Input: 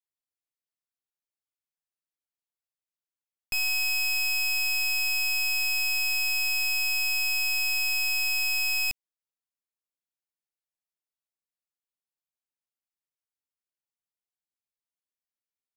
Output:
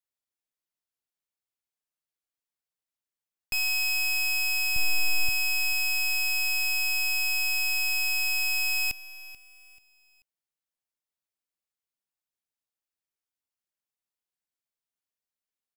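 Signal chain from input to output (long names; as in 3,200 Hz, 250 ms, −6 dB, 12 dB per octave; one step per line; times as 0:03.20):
0:04.76–0:05.29: low-shelf EQ 450 Hz +11 dB
repeating echo 436 ms, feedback 34%, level −18 dB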